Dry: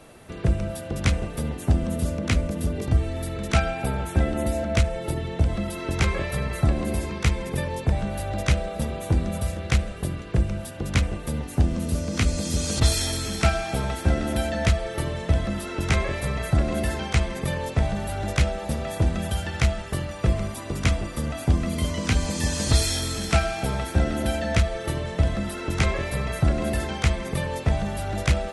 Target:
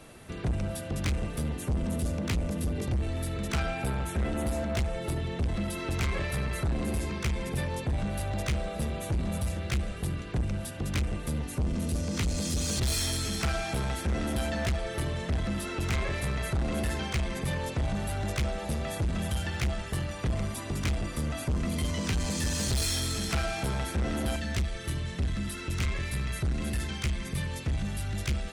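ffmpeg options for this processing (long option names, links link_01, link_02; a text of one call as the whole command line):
ffmpeg -i in.wav -af "asetnsamples=nb_out_samples=441:pad=0,asendcmd='24.36 equalizer g -15',equalizer=frequency=630:width=0.73:gain=-4,asoftclip=type=tanh:threshold=-24.5dB" out.wav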